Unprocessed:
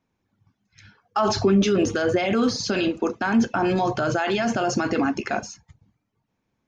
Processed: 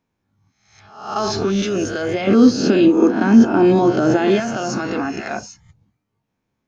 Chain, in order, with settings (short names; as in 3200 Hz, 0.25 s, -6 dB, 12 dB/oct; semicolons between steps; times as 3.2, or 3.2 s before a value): spectral swells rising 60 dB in 0.62 s; 2.27–4.4 bell 290 Hz +14.5 dB 1.5 oct; gain -2 dB